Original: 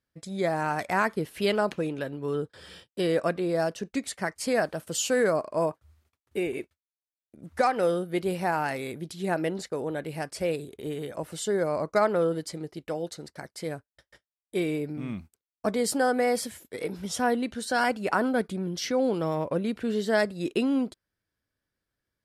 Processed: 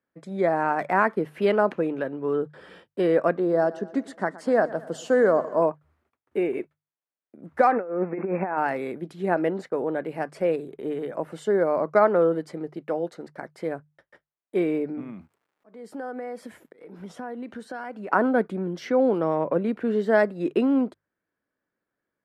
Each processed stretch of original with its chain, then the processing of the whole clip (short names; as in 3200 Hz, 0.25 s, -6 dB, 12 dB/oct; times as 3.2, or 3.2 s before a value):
3.37–5.62 LPF 9700 Hz + bell 2400 Hz -13 dB 0.35 oct + feedback echo 0.119 s, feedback 56%, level -18.5 dB
7.72–8.58 zero-crossing step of -40 dBFS + negative-ratio compressor -29 dBFS, ratio -0.5 + brick-wall FIR band-pass 160–2700 Hz
15–18.11 compressor, threshold -36 dBFS + crackle 300/s -59 dBFS + auto swell 0.35 s
whole clip: three-band isolator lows -18 dB, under 170 Hz, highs -19 dB, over 2100 Hz; notches 50/100/150 Hz; gain +5 dB